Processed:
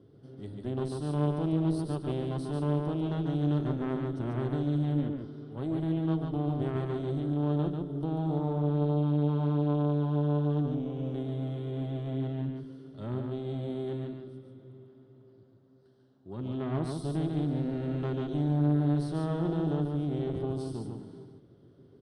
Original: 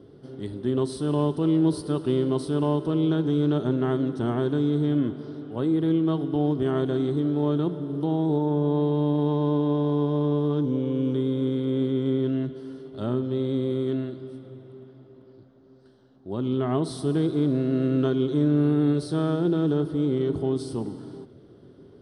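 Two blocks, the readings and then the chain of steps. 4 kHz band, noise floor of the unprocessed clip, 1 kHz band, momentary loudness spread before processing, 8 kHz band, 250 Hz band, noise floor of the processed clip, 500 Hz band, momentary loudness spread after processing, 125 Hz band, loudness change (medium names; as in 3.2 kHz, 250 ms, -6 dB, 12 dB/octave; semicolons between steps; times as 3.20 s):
-9.0 dB, -51 dBFS, -5.0 dB, 10 LU, no reading, -7.5 dB, -58 dBFS, -8.5 dB, 11 LU, -2.5 dB, -6.0 dB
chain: peaking EQ 120 Hz +6.5 dB 1.2 oct; valve stage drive 15 dB, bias 0.75; delay 143 ms -4 dB; trim -6 dB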